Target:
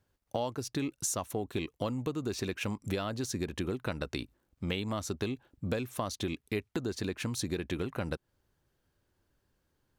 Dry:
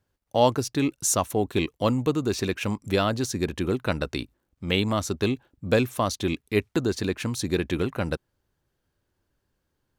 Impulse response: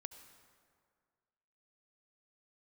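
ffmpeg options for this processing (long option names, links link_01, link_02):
-af "acompressor=threshold=-31dB:ratio=6"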